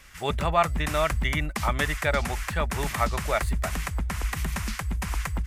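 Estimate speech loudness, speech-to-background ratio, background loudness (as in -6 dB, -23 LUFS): -28.5 LUFS, 2.5 dB, -31.0 LUFS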